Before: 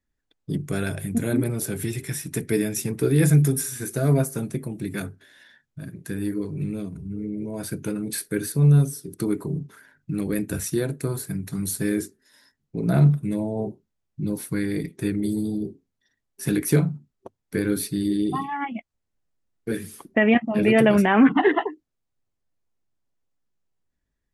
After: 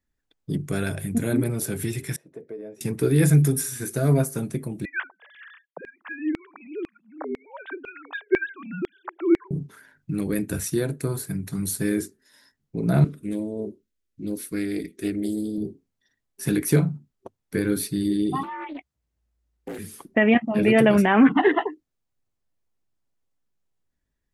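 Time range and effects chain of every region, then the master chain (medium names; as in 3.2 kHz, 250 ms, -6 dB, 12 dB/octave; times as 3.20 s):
2.16–2.81 s: band-pass filter 530 Hz, Q 3.7 + compression 5:1, threshold -32 dBFS
4.85–9.51 s: formants replaced by sine waves + LFO high-pass saw down 2 Hz 400–2200 Hz
13.04–15.58 s: static phaser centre 330 Hz, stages 4 + loudspeaker Doppler distortion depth 0.13 ms
18.43–19.79 s: compression 4:1, threshold -31 dBFS + frequency shift +57 Hz + loudspeaker Doppler distortion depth 0.3 ms
whole clip: none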